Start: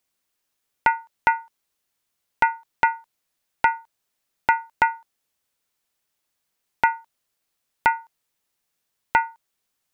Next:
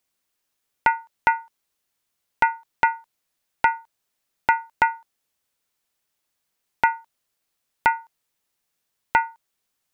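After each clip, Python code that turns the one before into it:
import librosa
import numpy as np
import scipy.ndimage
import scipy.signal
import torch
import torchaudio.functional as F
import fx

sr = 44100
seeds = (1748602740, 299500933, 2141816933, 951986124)

y = x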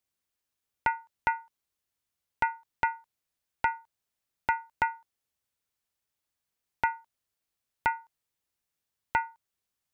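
y = fx.peak_eq(x, sr, hz=73.0, db=8.5, octaves=1.7)
y = F.gain(torch.from_numpy(y), -8.5).numpy()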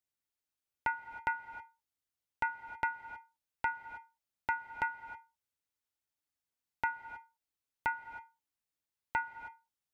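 y = fx.comb_fb(x, sr, f0_hz=290.0, decay_s=0.22, harmonics='odd', damping=0.0, mix_pct=60)
y = fx.rev_gated(y, sr, seeds[0], gate_ms=340, shape='rising', drr_db=12.0)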